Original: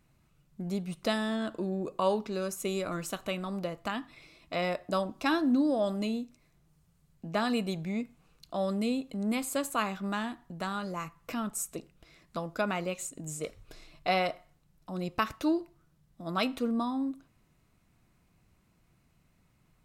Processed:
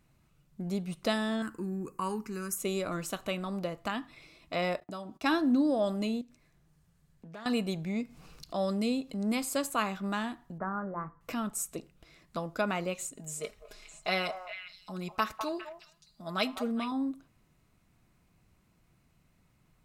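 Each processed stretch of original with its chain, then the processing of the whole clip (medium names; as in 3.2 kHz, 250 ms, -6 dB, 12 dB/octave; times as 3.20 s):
1.42–2.58 s: treble shelf 5.5 kHz +10 dB + static phaser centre 1.5 kHz, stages 4
4.80–5.24 s: gate -54 dBFS, range -21 dB + compression 2:1, threshold -42 dBFS + comb of notches 530 Hz
6.21–7.46 s: peaking EQ 1.7 kHz +6.5 dB 0.23 oct + compression 2.5:1, threshold -50 dBFS + loudspeaker Doppler distortion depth 0.23 ms
7.96–9.67 s: peaking EQ 5.1 kHz +7 dB 0.41 oct + upward compressor, threshold -40 dBFS
10.58–11.21 s: steep low-pass 1.7 kHz 48 dB/octave + hum notches 60/120/180/240/300/360/420/480 Hz
13.16–16.92 s: bass shelf 470 Hz -7.5 dB + comb 4.8 ms, depth 61% + repeats whose band climbs or falls 204 ms, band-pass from 860 Hz, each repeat 1.4 oct, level -6 dB
whole clip: none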